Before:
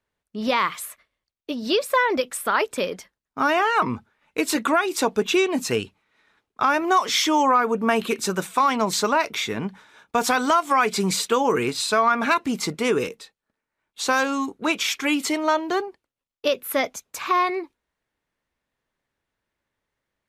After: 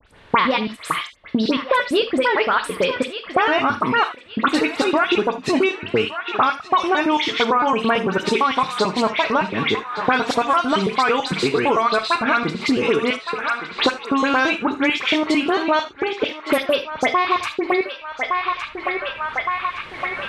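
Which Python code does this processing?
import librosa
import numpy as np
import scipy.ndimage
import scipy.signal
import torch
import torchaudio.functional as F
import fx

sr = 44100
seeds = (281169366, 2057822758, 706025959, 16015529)

p1 = fx.block_reorder(x, sr, ms=112.0, group=3)
p2 = fx.recorder_agc(p1, sr, target_db=-16.0, rise_db_per_s=5.0, max_gain_db=30)
p3 = scipy.signal.sosfilt(scipy.signal.butter(4, 10000.0, 'lowpass', fs=sr, output='sos'), p2)
p4 = fx.high_shelf_res(p3, sr, hz=4900.0, db=-9.5, q=1.5)
p5 = fx.dispersion(p4, sr, late='highs', ms=71.0, hz=2800.0)
p6 = fx.vibrato(p5, sr, rate_hz=3.8, depth_cents=17.0)
p7 = p6 + fx.echo_banded(p6, sr, ms=1164, feedback_pct=44, hz=1600.0, wet_db=-15.5, dry=0)
p8 = fx.rev_gated(p7, sr, seeds[0], gate_ms=100, shape='flat', drr_db=9.5)
p9 = fx.band_squash(p8, sr, depth_pct=100)
y = p9 * librosa.db_to_amplitude(2.0)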